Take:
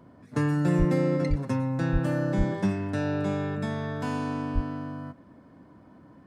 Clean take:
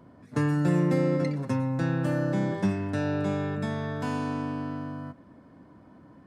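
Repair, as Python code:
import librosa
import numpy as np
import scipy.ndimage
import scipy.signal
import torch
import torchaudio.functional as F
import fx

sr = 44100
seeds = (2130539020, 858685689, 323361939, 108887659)

y = fx.fix_deplosive(x, sr, at_s=(0.78, 1.29, 1.92, 2.37, 4.54))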